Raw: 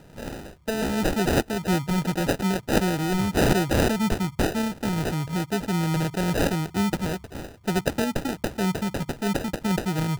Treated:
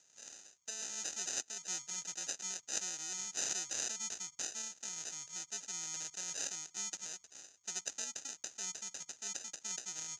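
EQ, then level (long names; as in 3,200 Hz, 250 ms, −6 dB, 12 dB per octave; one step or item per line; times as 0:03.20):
resonant band-pass 6,600 Hz, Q 15
high-frequency loss of the air 72 metres
+16.5 dB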